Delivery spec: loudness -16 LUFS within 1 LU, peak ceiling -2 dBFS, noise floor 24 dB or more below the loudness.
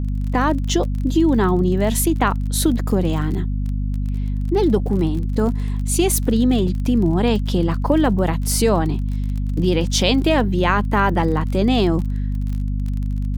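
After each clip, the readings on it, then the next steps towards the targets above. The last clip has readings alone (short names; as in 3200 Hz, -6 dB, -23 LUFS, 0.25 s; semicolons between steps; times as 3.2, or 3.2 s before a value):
ticks 34/s; hum 50 Hz; harmonics up to 250 Hz; hum level -19 dBFS; loudness -19.5 LUFS; peak -1.5 dBFS; loudness target -16.0 LUFS
-> de-click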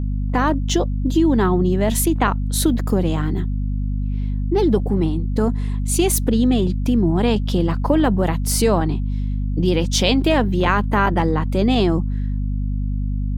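ticks 0.37/s; hum 50 Hz; harmonics up to 250 Hz; hum level -19 dBFS
-> notches 50/100/150/200/250 Hz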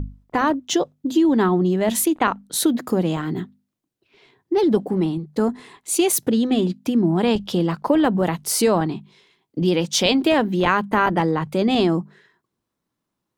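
hum none; loudness -20.5 LUFS; peak -3.5 dBFS; loudness target -16.0 LUFS
-> gain +4.5 dB; limiter -2 dBFS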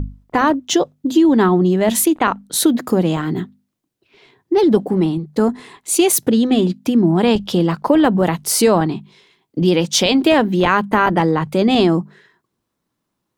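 loudness -16.0 LUFS; peak -2.0 dBFS; noise floor -76 dBFS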